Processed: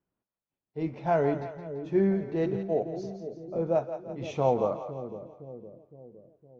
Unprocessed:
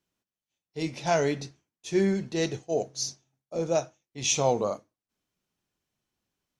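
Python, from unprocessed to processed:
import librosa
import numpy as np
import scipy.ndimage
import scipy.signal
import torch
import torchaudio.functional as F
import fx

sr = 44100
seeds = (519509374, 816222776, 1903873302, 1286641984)

y = scipy.signal.sosfilt(scipy.signal.butter(2, 1300.0, 'lowpass', fs=sr, output='sos'), x)
y = fx.echo_split(y, sr, split_hz=500.0, low_ms=512, high_ms=169, feedback_pct=52, wet_db=-9.5)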